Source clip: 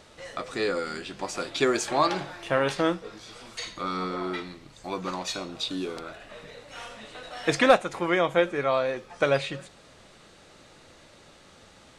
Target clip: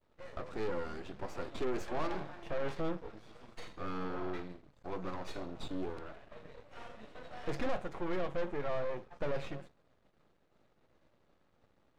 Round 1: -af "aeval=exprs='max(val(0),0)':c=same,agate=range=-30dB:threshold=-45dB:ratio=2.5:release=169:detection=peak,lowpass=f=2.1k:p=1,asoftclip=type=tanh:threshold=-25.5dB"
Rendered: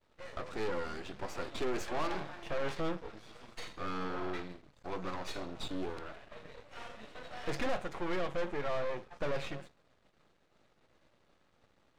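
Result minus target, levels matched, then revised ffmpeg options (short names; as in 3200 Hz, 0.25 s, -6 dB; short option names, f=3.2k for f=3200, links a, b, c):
2000 Hz band +3.0 dB
-af "aeval=exprs='max(val(0),0)':c=same,agate=range=-30dB:threshold=-45dB:ratio=2.5:release=169:detection=peak,lowpass=f=900:p=1,asoftclip=type=tanh:threshold=-25.5dB"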